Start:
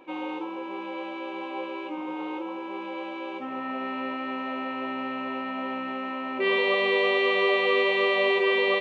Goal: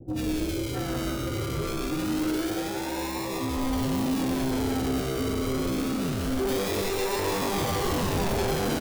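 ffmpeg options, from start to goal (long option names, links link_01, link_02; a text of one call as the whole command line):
ffmpeg -i in.wav -filter_complex "[0:a]asettb=1/sr,asplit=3[link_01][link_02][link_03];[link_01]atrim=end=5.004[link_04];[link_02]atrim=start=5:end=6.09,asetpts=PTS-STARTPTS,afade=type=in:duration=0.004:curve=qsin,afade=type=out:start_time=1.086:duration=0.004:curve=qsin,highpass=frequency=260:width=0.5412,highpass=frequency=260:width=1.3066[link_05];[link_03]atrim=start=6.086[link_06];[link_04][link_05]acrossfade=duration=0.004:curve1=hsin:curve2=qsin[link_07];[link_07][link_06]acrossfade=duration=0.004:curve1=qsin:curve2=hsin,acrusher=samples=40:mix=1:aa=0.000001:lfo=1:lforange=24:lforate=0.25,adynamicequalizer=threshold=0.00891:dfrequency=1700:dqfactor=1:tfrequency=1700:tqfactor=1:attack=5:release=100:ratio=0.375:range=2.5:mode=cutabove:tftype=bell,alimiter=limit=-20dB:level=0:latency=1,equalizer=frequency=590:width_type=o:width=0.22:gain=-4,acrossover=split=570|1900[link_08][link_09][link_10];[link_10]adelay=80[link_11];[link_09]adelay=660[link_12];[link_08][link_12][link_11]amix=inputs=3:normalize=0,asoftclip=type=tanh:threshold=-32dB,asplit=2[link_13][link_14];[link_14]aecho=0:1:180:0.501[link_15];[link_13][link_15]amix=inputs=2:normalize=0,volume=8dB" out.wav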